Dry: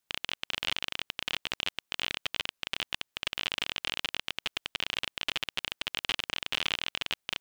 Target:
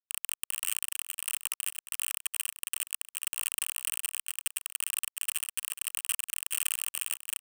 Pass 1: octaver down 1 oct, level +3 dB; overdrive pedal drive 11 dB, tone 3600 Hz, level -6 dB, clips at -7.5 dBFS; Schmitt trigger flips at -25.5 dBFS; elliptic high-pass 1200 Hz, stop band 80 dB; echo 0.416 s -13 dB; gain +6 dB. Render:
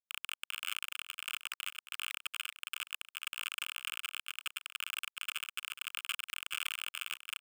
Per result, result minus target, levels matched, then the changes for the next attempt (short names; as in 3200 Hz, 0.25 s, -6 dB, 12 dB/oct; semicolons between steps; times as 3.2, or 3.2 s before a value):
8000 Hz band -7.5 dB; Schmitt trigger: distortion -7 dB
add after elliptic high-pass: resonant high shelf 5900 Hz +11.5 dB, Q 1.5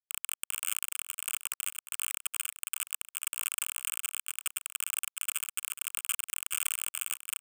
Schmitt trigger: distortion -7 dB
change: Schmitt trigger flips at -34.5 dBFS